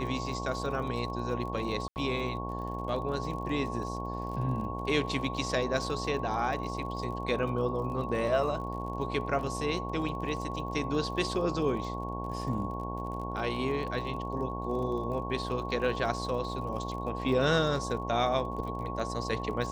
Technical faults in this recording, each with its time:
buzz 60 Hz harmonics 19 -37 dBFS
crackle 43 per s -40 dBFS
whine 1.1 kHz -38 dBFS
1.88–1.96 s: dropout 79 ms

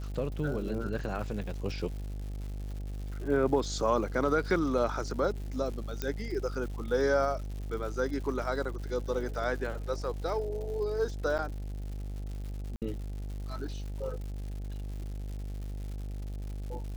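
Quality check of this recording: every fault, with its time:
buzz 50 Hz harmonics 17 -37 dBFS
crackle 220 per s -41 dBFS
6.02 s: pop -17 dBFS
11.38–11.39 s: dropout 8.3 ms
12.76–12.82 s: dropout 58 ms

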